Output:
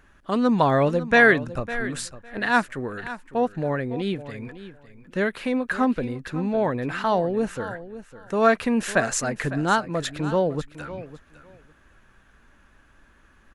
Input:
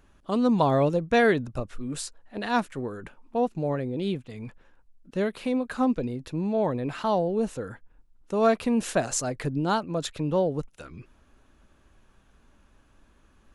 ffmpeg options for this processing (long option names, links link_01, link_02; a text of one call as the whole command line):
ffmpeg -i in.wav -filter_complex "[0:a]equalizer=frequency=1700:width_type=o:width=0.88:gain=10,asplit=2[link_01][link_02];[link_02]aecho=0:1:555|1110:0.188|0.0301[link_03];[link_01][link_03]amix=inputs=2:normalize=0,volume=1.5dB" out.wav